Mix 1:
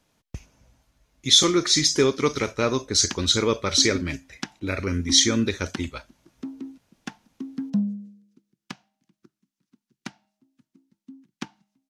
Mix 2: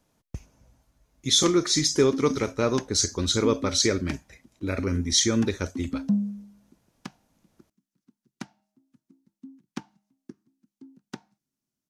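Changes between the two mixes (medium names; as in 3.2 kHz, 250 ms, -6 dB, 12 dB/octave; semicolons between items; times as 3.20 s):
background: entry -1.65 s; master: add peaking EQ 2.9 kHz -6.5 dB 2.1 oct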